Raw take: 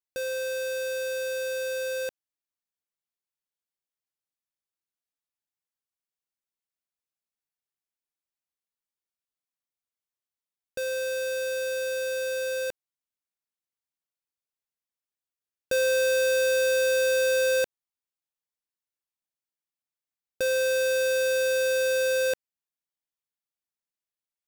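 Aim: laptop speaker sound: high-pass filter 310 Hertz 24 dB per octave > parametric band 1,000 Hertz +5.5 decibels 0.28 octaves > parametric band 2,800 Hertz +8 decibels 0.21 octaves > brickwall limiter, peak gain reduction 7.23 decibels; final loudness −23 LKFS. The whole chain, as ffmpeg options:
ffmpeg -i in.wav -af "highpass=frequency=310:width=0.5412,highpass=frequency=310:width=1.3066,equalizer=frequency=1000:width_type=o:width=0.28:gain=5.5,equalizer=frequency=2800:width_type=o:width=0.21:gain=8,volume=7dB,alimiter=limit=-14.5dB:level=0:latency=1" out.wav

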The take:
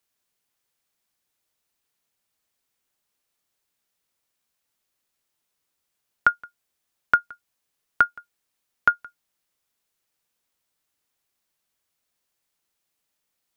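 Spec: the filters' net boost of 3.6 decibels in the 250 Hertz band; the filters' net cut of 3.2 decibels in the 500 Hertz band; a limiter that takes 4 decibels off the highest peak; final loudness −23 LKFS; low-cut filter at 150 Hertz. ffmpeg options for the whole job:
ffmpeg -i in.wav -af "highpass=150,equalizer=frequency=250:width_type=o:gain=7,equalizer=frequency=500:width_type=o:gain=-6,volume=4.5dB,alimiter=limit=-4.5dB:level=0:latency=1" out.wav

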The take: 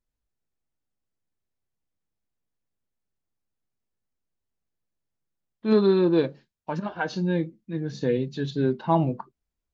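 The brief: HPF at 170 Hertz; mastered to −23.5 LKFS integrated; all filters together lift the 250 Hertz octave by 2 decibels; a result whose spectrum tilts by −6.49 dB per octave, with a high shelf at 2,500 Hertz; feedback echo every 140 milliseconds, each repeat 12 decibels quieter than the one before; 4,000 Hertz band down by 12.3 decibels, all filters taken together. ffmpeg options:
ffmpeg -i in.wav -af "highpass=170,equalizer=frequency=250:width_type=o:gain=4.5,highshelf=frequency=2500:gain=-8,equalizer=frequency=4000:width_type=o:gain=-7.5,aecho=1:1:140|280|420:0.251|0.0628|0.0157,volume=0.5dB" out.wav

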